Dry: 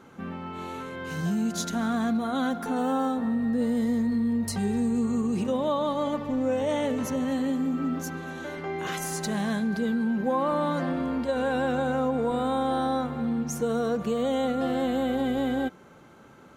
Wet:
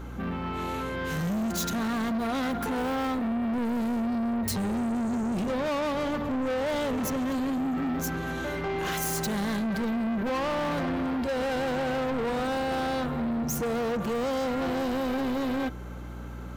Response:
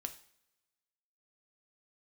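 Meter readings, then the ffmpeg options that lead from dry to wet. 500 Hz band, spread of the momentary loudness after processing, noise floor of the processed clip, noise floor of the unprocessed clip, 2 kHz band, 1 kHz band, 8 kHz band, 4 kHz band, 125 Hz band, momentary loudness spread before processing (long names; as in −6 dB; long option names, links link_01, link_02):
−2.0 dB, 3 LU, −38 dBFS, −51 dBFS, +2.0 dB, −1.0 dB, +1.0 dB, +1.5 dB, 0.0 dB, 7 LU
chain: -af "aeval=exprs='val(0)+0.00631*(sin(2*PI*60*n/s)+sin(2*PI*2*60*n/s)/2+sin(2*PI*3*60*n/s)/3+sin(2*PI*4*60*n/s)/4+sin(2*PI*5*60*n/s)/5)':channel_layout=same,asoftclip=type=tanh:threshold=-33dB,aexciter=amount=1.6:drive=7.2:freq=12000,volume=6.5dB"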